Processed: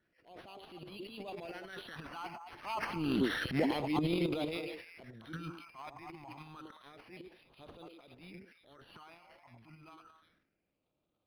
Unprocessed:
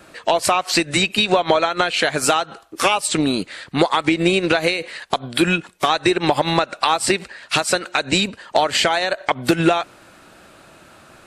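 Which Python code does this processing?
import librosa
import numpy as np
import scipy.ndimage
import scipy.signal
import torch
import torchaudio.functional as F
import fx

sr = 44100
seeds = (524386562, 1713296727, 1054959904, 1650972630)

p1 = fx.doppler_pass(x, sr, speed_mps=23, closest_m=2.5, pass_at_s=3.32)
p2 = fx.over_compress(p1, sr, threshold_db=-26.0, ratio=-1.0)
p3 = p2 + fx.echo_stepped(p2, sr, ms=109, hz=370.0, octaves=1.4, feedback_pct=70, wet_db=-5.0, dry=0)
p4 = fx.phaser_stages(p3, sr, stages=8, low_hz=450.0, high_hz=1700.0, hz=0.29, feedback_pct=25)
p5 = fx.transient(p4, sr, attack_db=-10, sustain_db=12)
y = np.interp(np.arange(len(p5)), np.arange(len(p5))[::6], p5[::6])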